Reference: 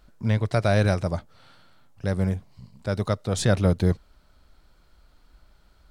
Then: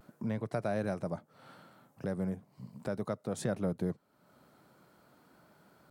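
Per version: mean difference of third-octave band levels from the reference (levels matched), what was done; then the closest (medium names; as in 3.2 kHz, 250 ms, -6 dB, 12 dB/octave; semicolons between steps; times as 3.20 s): 4.5 dB: high-pass 140 Hz 24 dB/octave; peaking EQ 4 kHz -12 dB 2.2 oct; compression 2:1, threshold -48 dBFS, peak gain reduction 16 dB; vibrato 0.4 Hz 25 cents; trim +5.5 dB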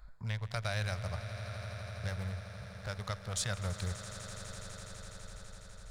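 10.0 dB: local Wiener filter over 15 samples; amplifier tone stack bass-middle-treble 10-0-10; compression 2:1, threshold -54 dBFS, peak gain reduction 14 dB; on a send: echo with a slow build-up 83 ms, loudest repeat 8, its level -16 dB; on the sum: trim +10 dB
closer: first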